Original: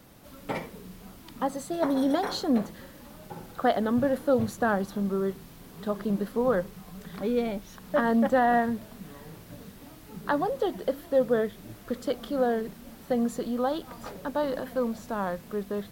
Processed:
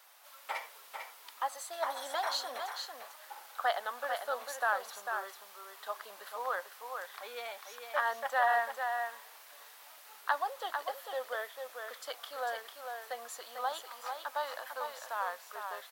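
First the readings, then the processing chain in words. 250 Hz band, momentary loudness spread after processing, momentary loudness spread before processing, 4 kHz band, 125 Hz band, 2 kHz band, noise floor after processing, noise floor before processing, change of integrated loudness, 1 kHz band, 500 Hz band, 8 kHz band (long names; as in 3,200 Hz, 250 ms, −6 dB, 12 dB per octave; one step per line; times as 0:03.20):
below −35 dB, 15 LU, 21 LU, 0.0 dB, below −40 dB, 0.0 dB, −55 dBFS, −49 dBFS, −8.5 dB, −3.0 dB, −12.5 dB, 0.0 dB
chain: high-pass filter 790 Hz 24 dB per octave
on a send: single-tap delay 447 ms −6 dB
on the sum: level −1 dB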